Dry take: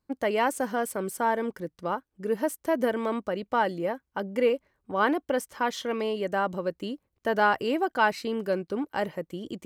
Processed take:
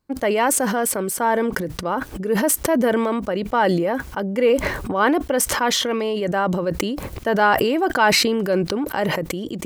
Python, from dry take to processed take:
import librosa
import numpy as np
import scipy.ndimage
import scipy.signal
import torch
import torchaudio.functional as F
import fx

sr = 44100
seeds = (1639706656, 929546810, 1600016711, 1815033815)

y = fx.sustainer(x, sr, db_per_s=21.0)
y = y * 10.0 ** (5.5 / 20.0)